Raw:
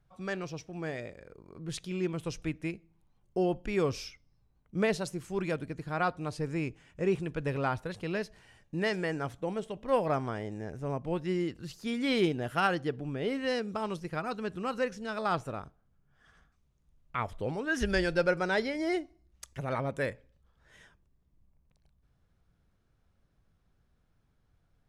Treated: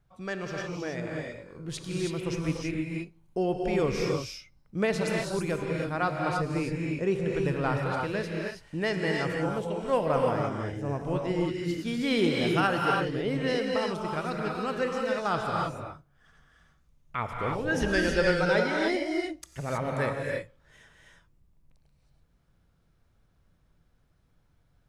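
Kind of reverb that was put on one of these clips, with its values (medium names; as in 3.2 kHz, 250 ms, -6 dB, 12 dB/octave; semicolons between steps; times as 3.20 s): gated-style reverb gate 350 ms rising, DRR -0.5 dB; trim +1 dB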